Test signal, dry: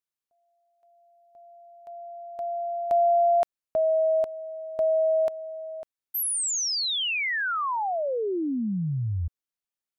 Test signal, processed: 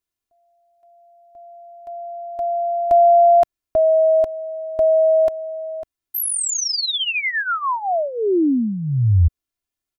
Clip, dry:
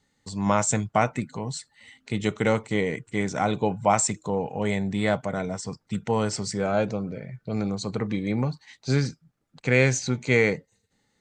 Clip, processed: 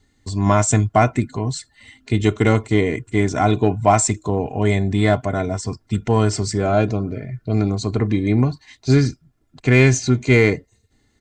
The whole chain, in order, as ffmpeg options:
-filter_complex "[0:a]lowshelf=f=230:g=12,aecho=1:1:2.9:0.65,asplit=2[s0][s1];[s1]volume=2.99,asoftclip=hard,volume=0.335,volume=0.631[s2];[s0][s2]amix=inputs=2:normalize=0,volume=0.891"

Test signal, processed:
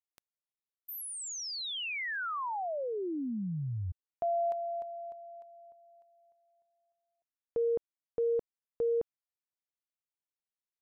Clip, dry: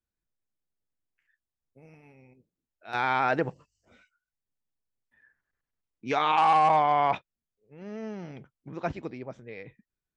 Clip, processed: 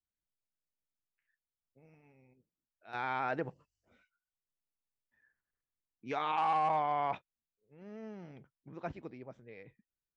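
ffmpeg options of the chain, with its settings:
-af "highshelf=f=4400:g=-7,volume=0.355"

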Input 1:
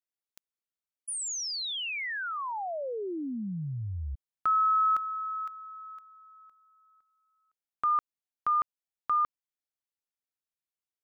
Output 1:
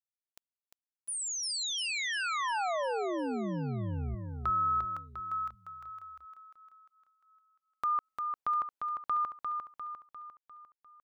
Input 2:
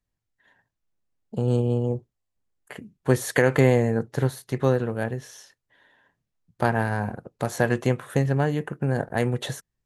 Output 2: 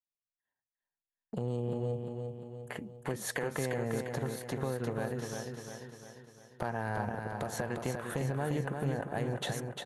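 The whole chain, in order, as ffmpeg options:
-filter_complex "[0:a]equalizer=f=820:w=0.89:g=4,agate=range=0.0282:threshold=0.00398:ratio=16:release=457:detection=rms,acompressor=threshold=0.0562:ratio=8:attack=0.61:release=281:knee=6:detection=peak,asplit=2[s0][s1];[s1]aecho=0:1:350|700|1050|1400|1750|2100:0.562|0.287|0.146|0.0746|0.038|0.0194[s2];[s0][s2]amix=inputs=2:normalize=0,volume=0.841"

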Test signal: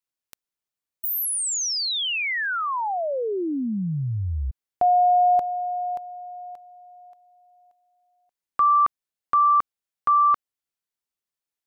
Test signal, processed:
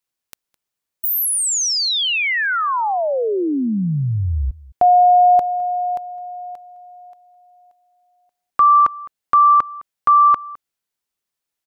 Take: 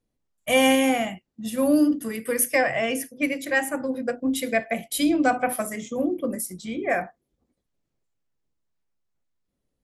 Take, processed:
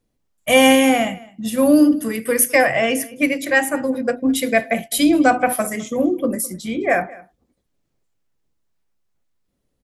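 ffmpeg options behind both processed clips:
-filter_complex "[0:a]asplit=2[s0][s1];[s1]adelay=209.9,volume=0.0891,highshelf=f=4000:g=-4.72[s2];[s0][s2]amix=inputs=2:normalize=0,volume=2.11"

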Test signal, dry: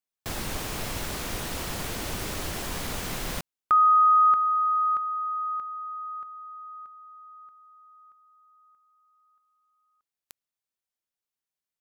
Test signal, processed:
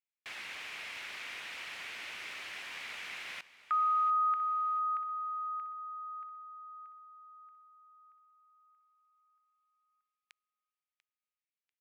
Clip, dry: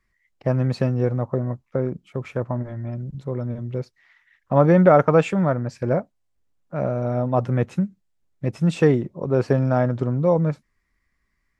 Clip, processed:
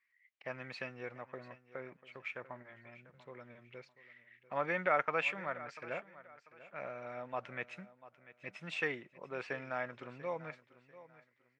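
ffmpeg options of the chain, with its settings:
-af "bandpass=f=2300:t=q:w=2.5:csg=0,aecho=1:1:692|1384|2076:0.141|0.0424|0.0127"

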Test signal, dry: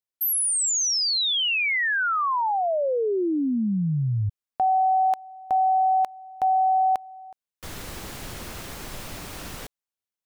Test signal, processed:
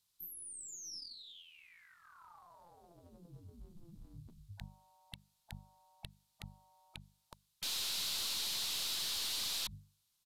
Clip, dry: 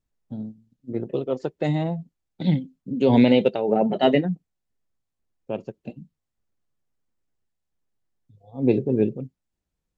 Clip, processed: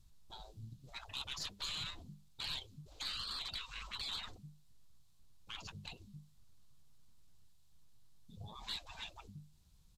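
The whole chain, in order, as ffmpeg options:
-filter_complex "[0:a]bandreject=f=50:t=h:w=6,bandreject=f=100:t=h:w=6,bandreject=f=150:t=h:w=6,bandreject=f=200:t=h:w=6,afftfilt=real='re*lt(hypot(re,im),0.282)':imag='im*lt(hypot(re,im),0.282)':win_size=1024:overlap=0.75,acrossover=split=4000[s0][s1];[s1]acompressor=threshold=0.00224:ratio=4:attack=1:release=60[s2];[s0][s2]amix=inputs=2:normalize=0,afftfilt=real='re*lt(hypot(re,im),0.01)':imag='im*lt(hypot(re,im),0.01)':win_size=1024:overlap=0.75,firequalizer=gain_entry='entry(140,0);entry(270,-13);entry(520,-16);entry(1000,-7);entry(1800,-13);entry(3900,1);entry(5800,-3)':delay=0.05:min_phase=1,acontrast=82,aeval=exprs='(tanh(158*val(0)+0.4)-tanh(0.4))/158':c=same,aresample=32000,aresample=44100,volume=3.76"

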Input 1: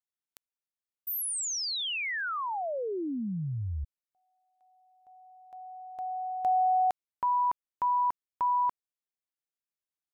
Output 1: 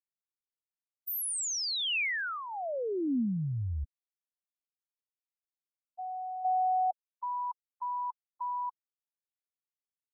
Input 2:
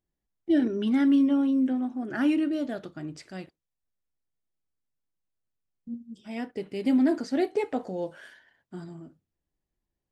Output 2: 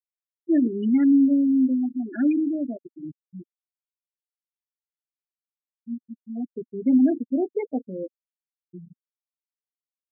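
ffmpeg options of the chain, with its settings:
-af "afftfilt=real='re*gte(hypot(re,im),0.1)':imag='im*gte(hypot(re,im),0.1)':win_size=1024:overlap=0.75,equalizer=f=250:t=o:w=0.67:g=5,equalizer=f=1000:t=o:w=0.67:g=-8,equalizer=f=2500:t=o:w=0.67:g=4"

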